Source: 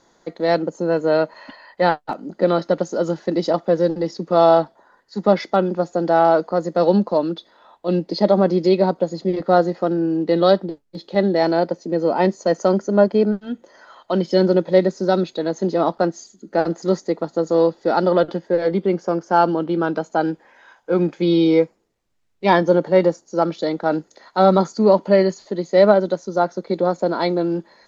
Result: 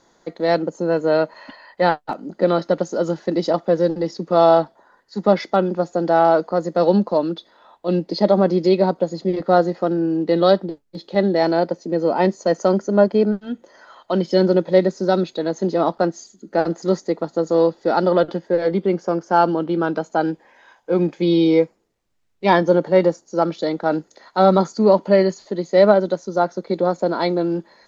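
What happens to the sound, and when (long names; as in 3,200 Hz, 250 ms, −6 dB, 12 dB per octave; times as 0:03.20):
0:20.31–0:21.63: parametric band 1,400 Hz −7 dB 0.24 octaves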